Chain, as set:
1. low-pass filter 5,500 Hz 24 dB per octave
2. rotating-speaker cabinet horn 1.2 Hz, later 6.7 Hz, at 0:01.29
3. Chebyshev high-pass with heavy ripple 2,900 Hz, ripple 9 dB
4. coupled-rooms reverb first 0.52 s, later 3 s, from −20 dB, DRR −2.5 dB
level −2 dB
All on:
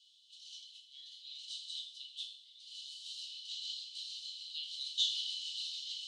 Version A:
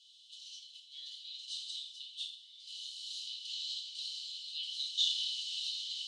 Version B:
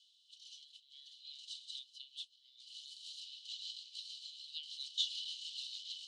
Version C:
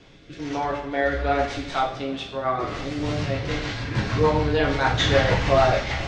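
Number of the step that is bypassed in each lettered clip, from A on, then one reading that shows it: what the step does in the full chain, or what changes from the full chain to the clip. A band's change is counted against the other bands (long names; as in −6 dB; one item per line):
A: 2, change in integrated loudness +2.0 LU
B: 4, change in integrated loudness −4.0 LU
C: 3, change in integrated loudness +16.5 LU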